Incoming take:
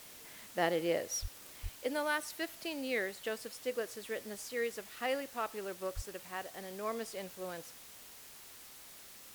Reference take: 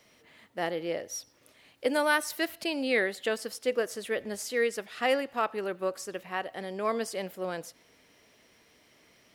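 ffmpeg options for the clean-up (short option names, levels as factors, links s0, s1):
-filter_complex "[0:a]asplit=3[s0][s1][s2];[s0]afade=t=out:st=1.21:d=0.02[s3];[s1]highpass=f=140:w=0.5412,highpass=f=140:w=1.3066,afade=t=in:st=1.21:d=0.02,afade=t=out:st=1.33:d=0.02[s4];[s2]afade=t=in:st=1.33:d=0.02[s5];[s3][s4][s5]amix=inputs=3:normalize=0,asplit=3[s6][s7][s8];[s6]afade=t=out:st=1.62:d=0.02[s9];[s7]highpass=f=140:w=0.5412,highpass=f=140:w=1.3066,afade=t=in:st=1.62:d=0.02,afade=t=out:st=1.74:d=0.02[s10];[s8]afade=t=in:st=1.74:d=0.02[s11];[s9][s10][s11]amix=inputs=3:normalize=0,asplit=3[s12][s13][s14];[s12]afade=t=out:st=5.95:d=0.02[s15];[s13]highpass=f=140:w=0.5412,highpass=f=140:w=1.3066,afade=t=in:st=5.95:d=0.02,afade=t=out:st=6.07:d=0.02[s16];[s14]afade=t=in:st=6.07:d=0.02[s17];[s15][s16][s17]amix=inputs=3:normalize=0,afwtdn=0.0022,asetnsamples=n=441:p=0,asendcmd='1.8 volume volume 8.5dB',volume=1"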